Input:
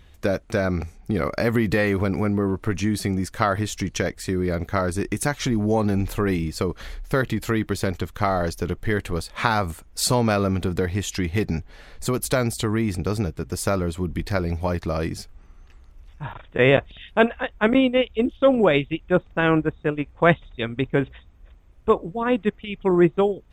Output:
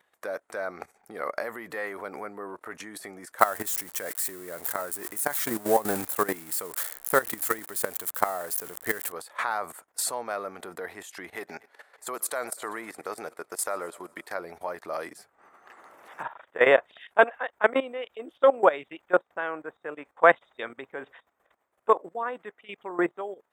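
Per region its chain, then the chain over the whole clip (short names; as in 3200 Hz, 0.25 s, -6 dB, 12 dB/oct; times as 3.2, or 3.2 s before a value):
3.39–9.12 switching spikes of -18 dBFS + low shelf 220 Hz +9.5 dB
11.35–14.35 low shelf 250 Hz -9 dB + thinning echo 0.121 s, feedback 71%, high-pass 250 Hz, level -22.5 dB
14.93–16.23 notches 50/100/150 Hz + three-band squash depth 100%
whole clip: band shelf 3900 Hz -9 dB; level quantiser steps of 16 dB; Chebyshev high-pass 690 Hz, order 2; gain +5 dB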